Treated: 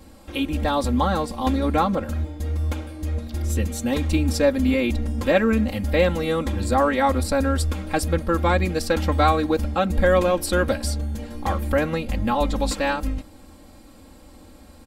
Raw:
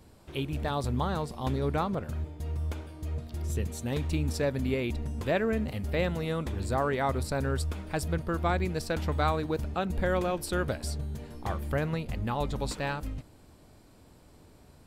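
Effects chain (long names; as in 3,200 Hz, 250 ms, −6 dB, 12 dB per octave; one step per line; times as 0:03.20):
comb filter 3.7 ms, depth 95%
0:05.56–0:06.19: surface crackle 48 per second −50 dBFS
level +6.5 dB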